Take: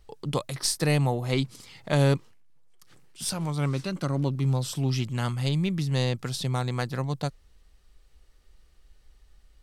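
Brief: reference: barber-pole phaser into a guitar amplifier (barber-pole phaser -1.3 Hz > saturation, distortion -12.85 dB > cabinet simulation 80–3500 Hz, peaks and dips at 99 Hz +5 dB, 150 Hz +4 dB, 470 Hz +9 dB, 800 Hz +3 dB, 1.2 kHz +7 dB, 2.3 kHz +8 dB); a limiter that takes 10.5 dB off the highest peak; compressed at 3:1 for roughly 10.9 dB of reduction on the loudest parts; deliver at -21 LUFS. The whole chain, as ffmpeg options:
-filter_complex "[0:a]acompressor=threshold=0.0224:ratio=3,alimiter=level_in=1.78:limit=0.0631:level=0:latency=1,volume=0.562,asplit=2[s0][s1];[s1]afreqshift=-1.3[s2];[s0][s2]amix=inputs=2:normalize=1,asoftclip=threshold=0.0126,highpass=80,equalizer=f=99:t=q:w=4:g=5,equalizer=f=150:t=q:w=4:g=4,equalizer=f=470:t=q:w=4:g=9,equalizer=f=800:t=q:w=4:g=3,equalizer=f=1200:t=q:w=4:g=7,equalizer=f=2300:t=q:w=4:g=8,lowpass=f=3500:w=0.5412,lowpass=f=3500:w=1.3066,volume=10.6"

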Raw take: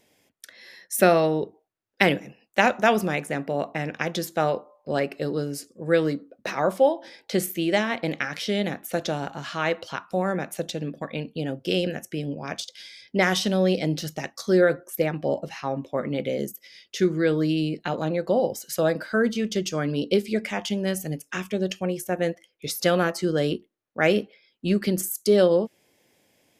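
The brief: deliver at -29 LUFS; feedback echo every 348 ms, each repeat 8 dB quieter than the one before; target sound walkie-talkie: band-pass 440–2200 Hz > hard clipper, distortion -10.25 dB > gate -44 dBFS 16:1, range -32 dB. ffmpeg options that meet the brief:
-af "highpass=440,lowpass=2200,aecho=1:1:348|696|1044|1392|1740:0.398|0.159|0.0637|0.0255|0.0102,asoftclip=type=hard:threshold=0.0944,agate=range=0.0251:threshold=0.00631:ratio=16,volume=1.12"

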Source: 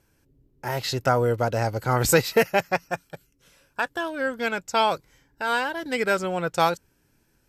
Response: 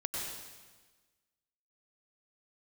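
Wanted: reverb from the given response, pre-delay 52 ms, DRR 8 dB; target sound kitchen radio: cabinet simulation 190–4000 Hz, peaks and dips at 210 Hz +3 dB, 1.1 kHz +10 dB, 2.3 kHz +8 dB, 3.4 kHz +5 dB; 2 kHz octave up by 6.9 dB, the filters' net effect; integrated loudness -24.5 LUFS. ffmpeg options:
-filter_complex "[0:a]equalizer=f=2000:t=o:g=4.5,asplit=2[s0][s1];[1:a]atrim=start_sample=2205,adelay=52[s2];[s1][s2]afir=irnorm=-1:irlink=0,volume=0.282[s3];[s0][s3]amix=inputs=2:normalize=0,highpass=190,equalizer=f=210:t=q:w=4:g=3,equalizer=f=1100:t=q:w=4:g=10,equalizer=f=2300:t=q:w=4:g=8,equalizer=f=3400:t=q:w=4:g=5,lowpass=f=4000:w=0.5412,lowpass=f=4000:w=1.3066,volume=0.631"

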